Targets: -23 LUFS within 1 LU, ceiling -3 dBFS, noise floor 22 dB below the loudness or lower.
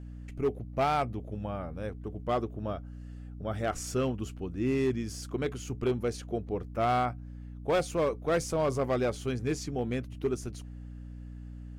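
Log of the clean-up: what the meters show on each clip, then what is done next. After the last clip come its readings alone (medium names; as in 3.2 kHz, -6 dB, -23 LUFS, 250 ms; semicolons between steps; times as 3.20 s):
clipped samples 1.3%; clipping level -21.5 dBFS; hum 60 Hz; highest harmonic 300 Hz; hum level -41 dBFS; loudness -32.0 LUFS; peak level -21.5 dBFS; loudness target -23.0 LUFS
-> clip repair -21.5 dBFS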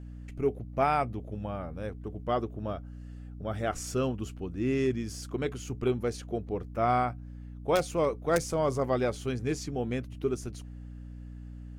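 clipped samples 0.0%; hum 60 Hz; highest harmonic 300 Hz; hum level -41 dBFS
-> de-hum 60 Hz, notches 5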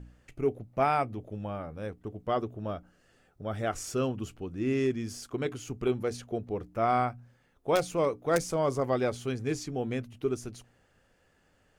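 hum not found; loudness -31.5 LUFS; peak level -12.5 dBFS; loudness target -23.0 LUFS
-> trim +8.5 dB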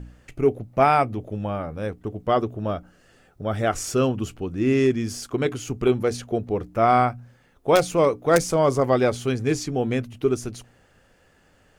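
loudness -23.0 LUFS; peak level -4.0 dBFS; noise floor -59 dBFS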